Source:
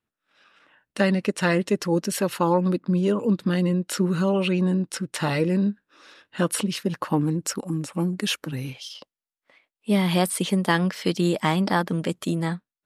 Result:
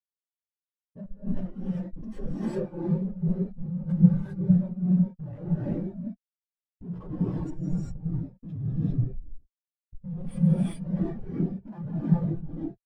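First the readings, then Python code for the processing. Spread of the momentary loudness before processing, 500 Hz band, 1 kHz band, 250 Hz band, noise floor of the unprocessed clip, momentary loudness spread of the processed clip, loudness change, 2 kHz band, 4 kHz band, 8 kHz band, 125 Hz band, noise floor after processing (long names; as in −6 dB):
8 LU, −14.0 dB, −21.0 dB, −4.0 dB, below −85 dBFS, 15 LU, −4.5 dB, below −25 dB, below −25 dB, below −25 dB, −0.5 dB, below −85 dBFS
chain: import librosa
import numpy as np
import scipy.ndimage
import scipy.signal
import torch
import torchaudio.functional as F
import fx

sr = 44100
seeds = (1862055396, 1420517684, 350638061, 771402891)

p1 = fx.phase_scramble(x, sr, seeds[0], window_ms=50)
p2 = scipy.signal.sosfilt(scipy.signal.butter(4, 56.0, 'highpass', fs=sr, output='sos'), p1)
p3 = p2 + fx.echo_wet_highpass(p2, sr, ms=210, feedback_pct=32, hz=2000.0, wet_db=-5.0, dry=0)
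p4 = fx.step_gate(p3, sr, bpm=130, pattern='...xxx.xx..xx.', floor_db=-24.0, edge_ms=4.5)
p5 = fx.low_shelf(p4, sr, hz=240.0, db=8.5)
p6 = fx.schmitt(p5, sr, flips_db=-30.5)
p7 = fx.rev_gated(p6, sr, seeds[1], gate_ms=430, shape='rising', drr_db=-5.0)
y = fx.spectral_expand(p7, sr, expansion=2.5)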